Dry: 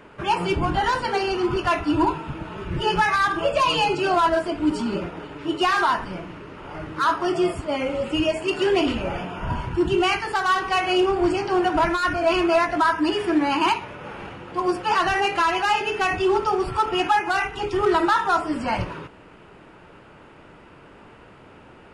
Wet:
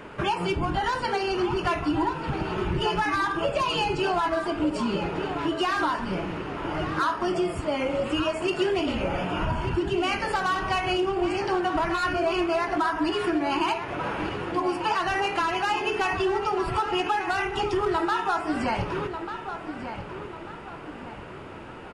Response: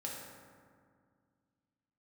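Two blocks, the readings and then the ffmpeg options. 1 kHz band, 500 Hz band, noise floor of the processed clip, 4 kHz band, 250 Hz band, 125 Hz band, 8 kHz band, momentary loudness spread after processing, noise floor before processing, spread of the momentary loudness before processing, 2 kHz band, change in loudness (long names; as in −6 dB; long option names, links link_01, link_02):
−4.5 dB, −3.5 dB, −40 dBFS, −3.5 dB, −3.0 dB, −0.5 dB, −4.0 dB, 10 LU, −48 dBFS, 11 LU, −4.0 dB, −4.5 dB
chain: -filter_complex "[0:a]acompressor=threshold=-29dB:ratio=5,asplit=2[link_01][link_02];[link_02]adelay=1193,lowpass=frequency=3700:poles=1,volume=-9dB,asplit=2[link_03][link_04];[link_04]adelay=1193,lowpass=frequency=3700:poles=1,volume=0.41,asplit=2[link_05][link_06];[link_06]adelay=1193,lowpass=frequency=3700:poles=1,volume=0.41,asplit=2[link_07][link_08];[link_08]adelay=1193,lowpass=frequency=3700:poles=1,volume=0.41,asplit=2[link_09][link_10];[link_10]adelay=1193,lowpass=frequency=3700:poles=1,volume=0.41[link_11];[link_01][link_03][link_05][link_07][link_09][link_11]amix=inputs=6:normalize=0,volume=5dB"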